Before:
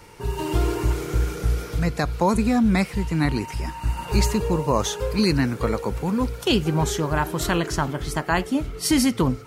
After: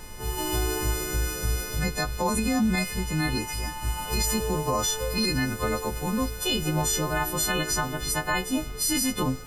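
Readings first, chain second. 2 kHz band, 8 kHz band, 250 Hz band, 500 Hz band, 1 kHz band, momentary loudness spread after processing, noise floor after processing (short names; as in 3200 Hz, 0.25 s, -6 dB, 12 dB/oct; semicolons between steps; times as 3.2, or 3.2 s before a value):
-0.5 dB, +4.5 dB, -6.0 dB, -5.0 dB, -3.5 dB, 5 LU, -37 dBFS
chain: frequency quantiser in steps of 3 st; limiter -12.5 dBFS, peak gain reduction 10.5 dB; added noise brown -38 dBFS; gain -3.5 dB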